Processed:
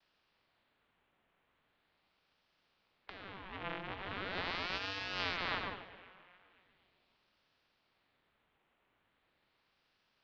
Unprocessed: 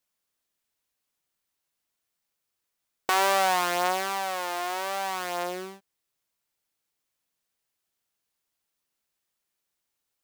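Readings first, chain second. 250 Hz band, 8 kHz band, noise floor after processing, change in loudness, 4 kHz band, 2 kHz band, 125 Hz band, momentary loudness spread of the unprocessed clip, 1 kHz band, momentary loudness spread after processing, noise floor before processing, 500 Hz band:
-8.5 dB, -28.5 dB, -79 dBFS, -12.5 dB, -8.0 dB, -9.0 dB, -0.5 dB, 12 LU, -17.5 dB, 18 LU, -82 dBFS, -16.0 dB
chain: spectral levelling over time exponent 0.6; gate with hold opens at -49 dBFS; de-hum 183.7 Hz, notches 4; compressor with a negative ratio -30 dBFS, ratio -1; Chebyshev shaper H 3 -31 dB, 4 -18 dB, 7 -21 dB, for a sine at -10 dBFS; mistuned SSB -290 Hz 200–3400 Hz; two-band feedback delay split 810 Hz, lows 132 ms, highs 261 ms, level -13.5 dB; ring modulator with a swept carrier 1.2 kHz, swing 80%, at 0.4 Hz; trim -6.5 dB

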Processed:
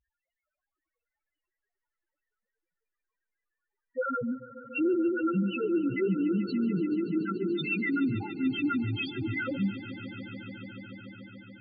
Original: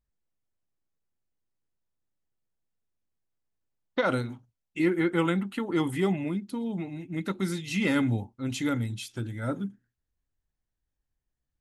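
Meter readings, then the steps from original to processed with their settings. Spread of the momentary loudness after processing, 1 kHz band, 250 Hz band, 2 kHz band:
15 LU, -2.5 dB, +1.0 dB, -0.5 dB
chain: overdrive pedal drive 34 dB, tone 3.9 kHz, clips at -12.5 dBFS; peaking EQ 2.6 kHz +4.5 dB 2.4 oct; loudest bins only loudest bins 1; on a send: echo with a slow build-up 144 ms, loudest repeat 5, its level -18 dB; on the sum: trim -1.5 dB

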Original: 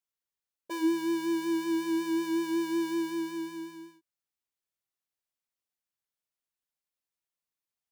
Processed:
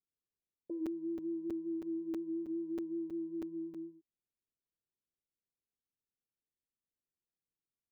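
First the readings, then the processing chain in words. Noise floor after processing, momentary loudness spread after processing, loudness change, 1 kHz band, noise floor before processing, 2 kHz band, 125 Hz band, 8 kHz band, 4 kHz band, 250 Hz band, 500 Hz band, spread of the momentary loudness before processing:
under -85 dBFS, 5 LU, -9.0 dB, under -25 dB, under -85 dBFS, under -25 dB, -5.0 dB, under -25 dB, under -25 dB, -8.5 dB, no reading, 11 LU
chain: inverse Chebyshev low-pass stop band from 1.2 kHz, stop band 50 dB; compression 4:1, threshold -41 dBFS, peak gain reduction 15 dB; crackling interface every 0.32 s, samples 256, zero, from 0.86 s; trim +2.5 dB

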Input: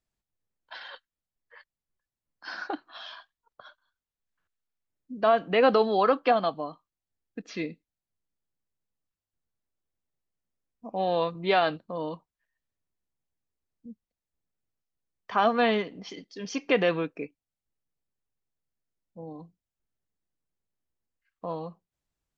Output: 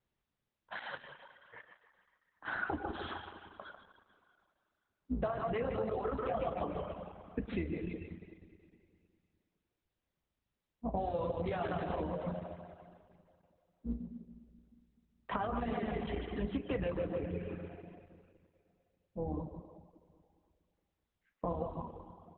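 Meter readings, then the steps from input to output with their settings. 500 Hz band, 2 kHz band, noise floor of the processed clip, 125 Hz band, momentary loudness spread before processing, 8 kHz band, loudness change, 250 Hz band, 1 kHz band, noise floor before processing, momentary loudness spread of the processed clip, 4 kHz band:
-10.5 dB, -10.0 dB, under -85 dBFS, +1.0 dB, 21 LU, no reading, -12.0 dB, -5.5 dB, -11.5 dB, under -85 dBFS, 18 LU, -15.5 dB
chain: octave divider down 2 oct, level 0 dB; feedback delay 148 ms, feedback 36%, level -5.5 dB; peak limiter -19.5 dBFS, peak gain reduction 11.5 dB; treble shelf 5.9 kHz -5.5 dB; spring tank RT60 2.2 s, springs 34/51 ms, chirp 35 ms, DRR 3 dB; flange 1.2 Hz, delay 9.2 ms, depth 7.3 ms, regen -42%; reverb removal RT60 0.87 s; high-pass 53 Hz 6 dB/octave; distance through air 340 m; compression 16:1, threshold -40 dBFS, peak gain reduction 14 dB; trim +9 dB; Opus 8 kbps 48 kHz

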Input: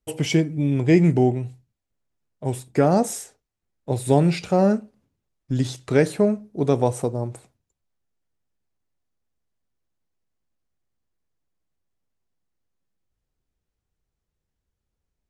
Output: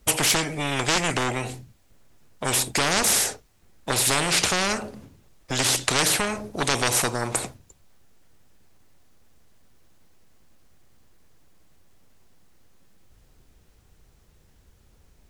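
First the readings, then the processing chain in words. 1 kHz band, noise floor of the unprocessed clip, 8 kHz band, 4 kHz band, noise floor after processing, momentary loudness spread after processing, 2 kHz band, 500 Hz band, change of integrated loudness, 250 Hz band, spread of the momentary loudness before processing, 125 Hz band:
+2.0 dB, -82 dBFS, +14.5 dB, +13.5 dB, -59 dBFS, 11 LU, +9.5 dB, -7.5 dB, -1.0 dB, -10.0 dB, 12 LU, -9.5 dB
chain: in parallel at -4 dB: sine folder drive 12 dB, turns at -2.5 dBFS; on the sum: spectrum-flattening compressor 4:1

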